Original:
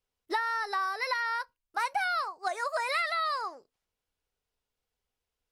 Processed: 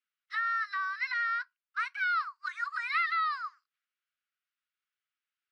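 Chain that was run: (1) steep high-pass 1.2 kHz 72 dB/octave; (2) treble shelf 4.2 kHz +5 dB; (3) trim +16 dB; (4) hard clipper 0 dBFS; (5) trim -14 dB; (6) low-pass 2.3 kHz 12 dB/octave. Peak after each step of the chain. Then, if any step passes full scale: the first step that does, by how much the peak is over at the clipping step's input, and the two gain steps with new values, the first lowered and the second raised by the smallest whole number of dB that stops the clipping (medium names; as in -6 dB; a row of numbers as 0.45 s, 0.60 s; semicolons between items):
-20.0 dBFS, -19.0 dBFS, -3.0 dBFS, -3.0 dBFS, -17.0 dBFS, -19.5 dBFS; nothing clips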